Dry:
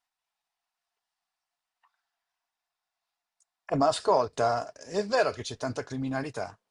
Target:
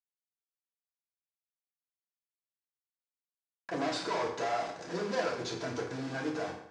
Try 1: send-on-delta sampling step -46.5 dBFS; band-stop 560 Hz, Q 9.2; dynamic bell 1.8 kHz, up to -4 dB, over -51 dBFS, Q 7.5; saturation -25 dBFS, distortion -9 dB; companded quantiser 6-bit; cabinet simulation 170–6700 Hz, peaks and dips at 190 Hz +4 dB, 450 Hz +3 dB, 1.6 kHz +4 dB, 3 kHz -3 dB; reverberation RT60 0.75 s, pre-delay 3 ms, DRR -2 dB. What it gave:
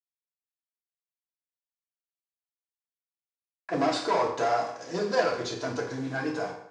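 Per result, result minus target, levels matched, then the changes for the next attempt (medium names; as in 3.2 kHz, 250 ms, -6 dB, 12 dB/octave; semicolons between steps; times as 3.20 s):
send-on-delta sampling: distortion -10 dB; saturation: distortion -6 dB
change: send-on-delta sampling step -37.5 dBFS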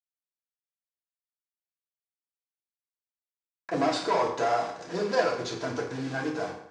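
saturation: distortion -6 dB
change: saturation -35 dBFS, distortion -3 dB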